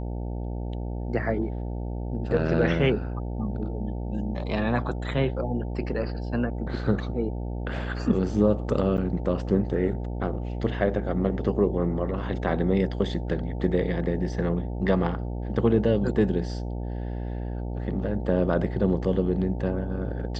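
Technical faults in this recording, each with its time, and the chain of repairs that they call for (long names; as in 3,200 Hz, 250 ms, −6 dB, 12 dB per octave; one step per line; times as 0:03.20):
mains buzz 60 Hz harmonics 15 −31 dBFS
0:08.97–0:08.98: drop-out 9 ms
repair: hum removal 60 Hz, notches 15
repair the gap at 0:08.97, 9 ms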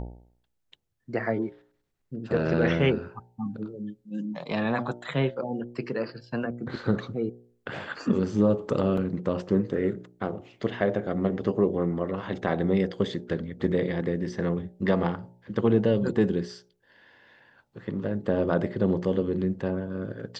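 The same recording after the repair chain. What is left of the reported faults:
none of them is left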